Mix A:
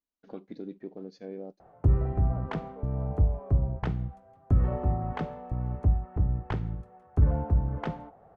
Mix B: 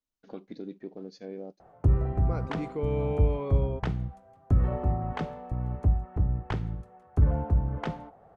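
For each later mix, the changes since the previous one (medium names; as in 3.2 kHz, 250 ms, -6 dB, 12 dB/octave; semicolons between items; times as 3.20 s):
second voice: remove ladder band-pass 710 Hz, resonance 70%; master: add treble shelf 3.6 kHz +8 dB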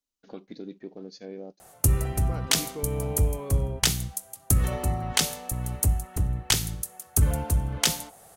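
second voice -3.5 dB; background: remove low-pass 1.2 kHz 12 dB/octave; master: add treble shelf 3.1 kHz +9 dB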